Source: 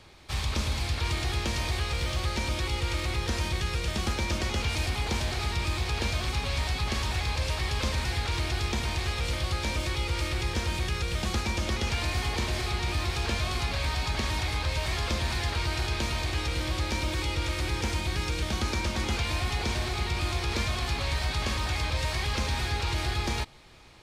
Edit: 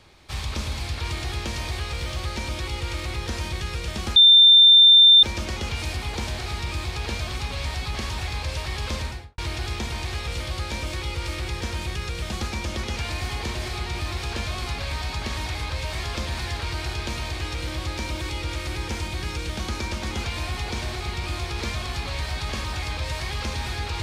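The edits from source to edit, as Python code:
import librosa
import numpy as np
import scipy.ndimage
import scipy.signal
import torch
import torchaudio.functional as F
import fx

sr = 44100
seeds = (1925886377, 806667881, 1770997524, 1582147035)

y = fx.studio_fade_out(x, sr, start_s=7.92, length_s=0.39)
y = fx.edit(y, sr, fx.insert_tone(at_s=4.16, length_s=1.07, hz=3580.0, db=-8.5), tone=tone)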